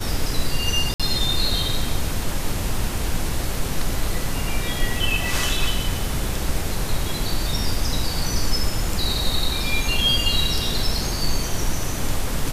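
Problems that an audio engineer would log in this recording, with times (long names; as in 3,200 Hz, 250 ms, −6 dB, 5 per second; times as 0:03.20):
0:00.94–0:01.00: drop-out 56 ms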